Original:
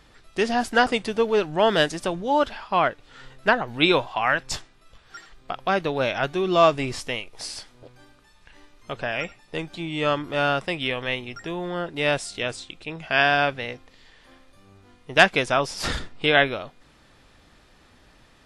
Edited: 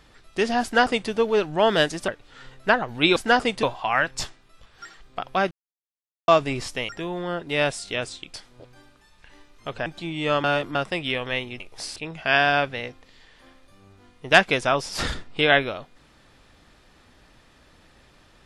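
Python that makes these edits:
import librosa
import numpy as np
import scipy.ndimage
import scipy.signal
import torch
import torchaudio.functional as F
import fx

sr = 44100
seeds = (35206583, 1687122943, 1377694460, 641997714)

y = fx.edit(x, sr, fx.duplicate(start_s=0.63, length_s=0.47, to_s=3.95),
    fx.cut(start_s=2.08, length_s=0.79),
    fx.silence(start_s=5.83, length_s=0.77),
    fx.swap(start_s=7.21, length_s=0.36, other_s=11.36, other_length_s=1.45),
    fx.cut(start_s=9.09, length_s=0.53),
    fx.reverse_span(start_s=10.2, length_s=0.31), tone=tone)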